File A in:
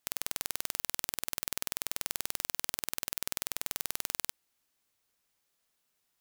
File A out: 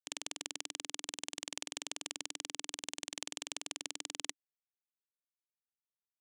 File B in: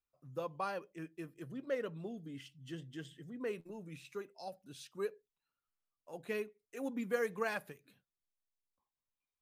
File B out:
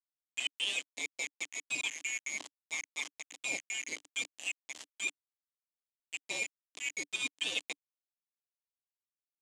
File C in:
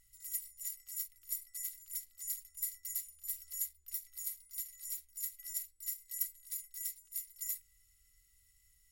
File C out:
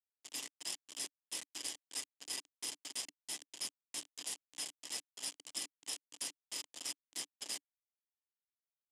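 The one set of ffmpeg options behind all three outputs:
ffmpeg -i in.wav -af "afftfilt=real='real(if(lt(b,920),b+92*(1-2*mod(floor(b/92),2)),b),0)':imag='imag(if(lt(b,920),b+92*(1-2*mod(floor(b/92),2)),b),0)':win_size=2048:overlap=0.75,areverse,acompressor=threshold=-46dB:ratio=10,areverse,aeval=exprs='val(0)*gte(abs(val(0)),0.00473)':channel_layout=same,highpass=220,equalizer=frequency=290:width_type=q:width=4:gain=9,equalizer=frequency=1400:width_type=q:width=4:gain=-9,equalizer=frequency=3100:width_type=q:width=4:gain=7,equalizer=frequency=7100:width_type=q:width=4:gain=5,lowpass=frequency=8700:width=0.5412,lowpass=frequency=8700:width=1.3066,tremolo=f=130:d=0.333,volume=14dB" out.wav

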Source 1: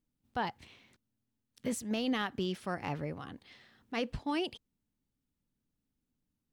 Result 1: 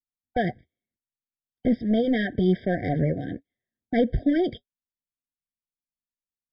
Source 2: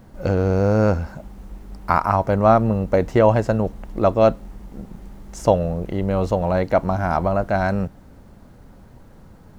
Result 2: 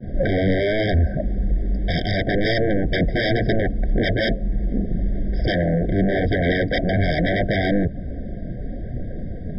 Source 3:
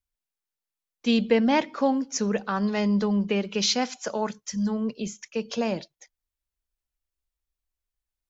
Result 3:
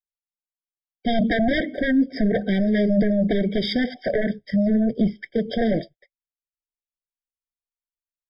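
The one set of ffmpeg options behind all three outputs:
ffmpeg -i in.wav -filter_complex "[0:a]agate=range=-41dB:threshold=-47dB:ratio=16:detection=peak,lowpass=frequency=3800:poles=1,highshelf=frequency=2000:gain=-10,asplit=2[link_01][link_02];[link_02]acompressor=threshold=-32dB:ratio=6,volume=0dB[link_03];[link_01][link_03]amix=inputs=2:normalize=0,asoftclip=type=tanh:threshold=-10dB,flanger=delay=0:depth=6.3:regen=-61:speed=0.77:shape=sinusoidal,aresample=11025,aeval=exprs='0.266*sin(PI/2*5.01*val(0)/0.266)':channel_layout=same,aresample=44100,aphaser=in_gain=1:out_gain=1:delay=4.1:decay=0.25:speed=2:type=triangular,afftfilt=real='re*eq(mod(floor(b*sr/1024/770),2),0)':imag='im*eq(mod(floor(b*sr/1024/770),2),0)':win_size=1024:overlap=0.75,volume=-4dB" out.wav

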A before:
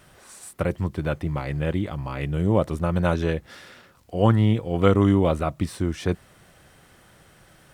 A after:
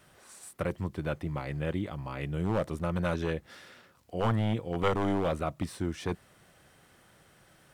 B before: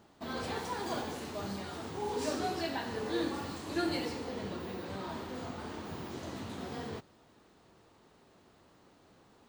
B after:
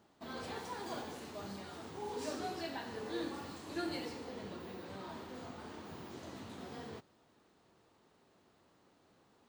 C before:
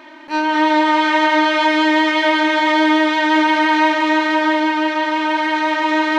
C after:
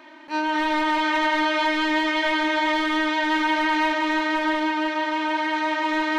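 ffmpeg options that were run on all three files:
ffmpeg -i in.wav -filter_complex "[0:a]lowshelf=frequency=66:gain=-8,acrossover=split=960[link_01][link_02];[link_01]aeval=exprs='0.178*(abs(mod(val(0)/0.178+3,4)-2)-1)':channel_layout=same[link_03];[link_03][link_02]amix=inputs=2:normalize=0,volume=-6dB" out.wav

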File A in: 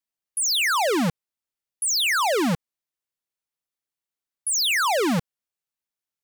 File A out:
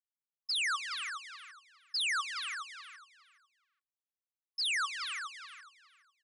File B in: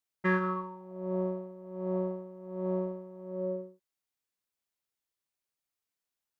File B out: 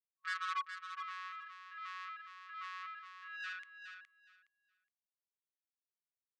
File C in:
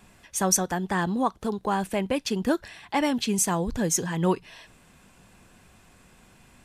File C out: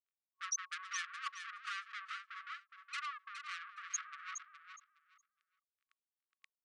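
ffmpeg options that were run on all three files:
ffmpeg -i in.wav -filter_complex "[0:a]aeval=exprs='val(0)+0.5*0.0316*sgn(val(0))':channel_layout=same,aemphasis=mode=reproduction:type=75fm,afftfilt=real='re*gte(hypot(re,im),0.2)':imag='im*gte(hypot(re,im),0.2)':win_size=1024:overlap=0.75,highshelf=frequency=1800:width_type=q:width=1.5:gain=6.5,areverse,acompressor=mode=upward:threshold=-39dB:ratio=2.5,areverse,alimiter=limit=-22dB:level=0:latency=1:release=107,acompressor=threshold=-27dB:ratio=6,asoftclip=type=tanh:threshold=-40dB,asplit=2[link_01][link_02];[link_02]aecho=0:1:416|832|1248:0.398|0.0717|0.0129[link_03];[link_01][link_03]amix=inputs=2:normalize=0,afftfilt=real='re*between(b*sr/4096,1100,11000)':imag='im*between(b*sr/4096,1100,11000)':win_size=4096:overlap=0.75,volume=9dB" out.wav

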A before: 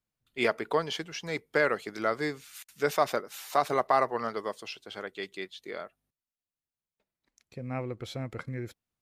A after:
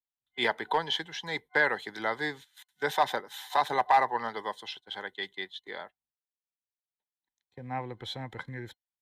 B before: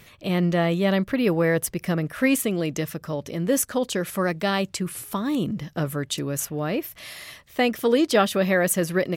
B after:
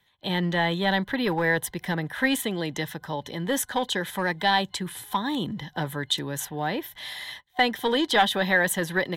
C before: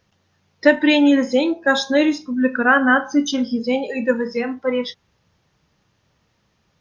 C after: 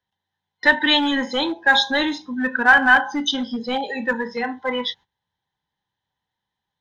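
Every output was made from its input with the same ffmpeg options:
ffmpeg -i in.wav -filter_complex "[0:a]agate=range=-18dB:threshold=-44dB:ratio=16:detection=peak,superequalizer=9b=3.98:11b=2.82:13b=3.55,acrossover=split=110|980|1600[link_01][link_02][link_03][link_04];[link_02]volume=16dB,asoftclip=hard,volume=-16dB[link_05];[link_01][link_05][link_03][link_04]amix=inputs=4:normalize=0,volume=-4.5dB" out.wav

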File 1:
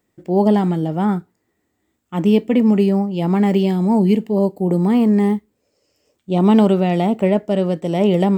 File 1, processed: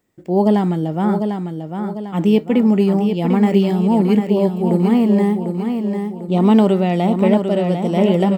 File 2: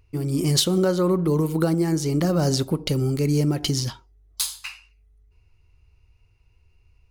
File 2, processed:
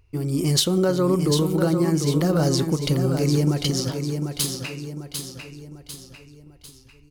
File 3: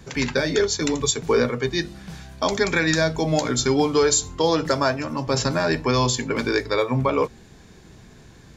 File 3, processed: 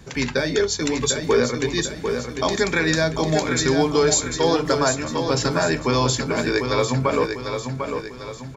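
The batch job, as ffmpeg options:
ffmpeg -i in.wav -af "aecho=1:1:748|1496|2244|2992|3740:0.473|0.213|0.0958|0.0431|0.0194" out.wav

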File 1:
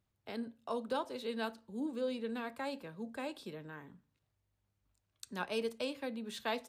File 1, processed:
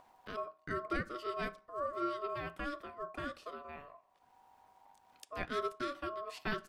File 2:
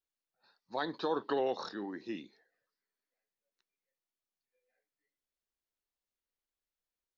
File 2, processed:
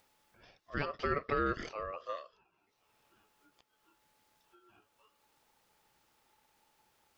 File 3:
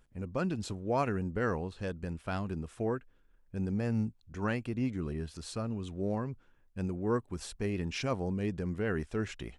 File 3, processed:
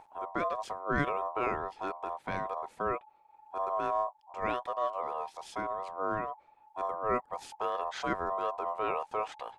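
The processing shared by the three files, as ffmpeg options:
ffmpeg -i in.wav -af "acompressor=mode=upward:threshold=-48dB:ratio=2.5,aeval=exprs='val(0)*sin(2*PI*860*n/s)':channel_layout=same,highshelf=frequency=3100:gain=-8.5,volume=3.5dB" out.wav

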